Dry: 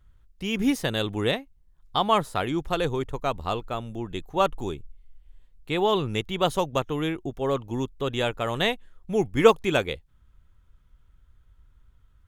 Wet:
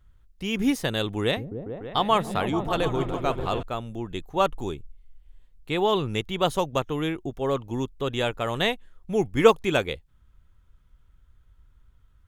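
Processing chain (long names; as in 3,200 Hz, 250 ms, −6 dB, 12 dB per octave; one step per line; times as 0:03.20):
0:01.22–0:03.63: echo whose low-pass opens from repeat to repeat 146 ms, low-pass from 200 Hz, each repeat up 1 octave, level −3 dB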